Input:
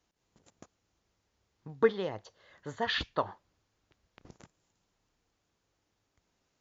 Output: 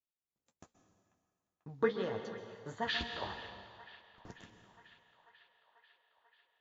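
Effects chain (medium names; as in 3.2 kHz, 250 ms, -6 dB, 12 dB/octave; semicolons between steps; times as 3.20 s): gate -59 dBFS, range -23 dB; 3.11–4.32 s: compressor with a negative ratio -33 dBFS, ratio -0.5; flange 1.4 Hz, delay 9.1 ms, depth 6.7 ms, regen -39%; feedback echo behind a band-pass 491 ms, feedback 72%, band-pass 1.6 kHz, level -16.5 dB; plate-style reverb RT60 1.8 s, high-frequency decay 1×, pre-delay 115 ms, DRR 7 dB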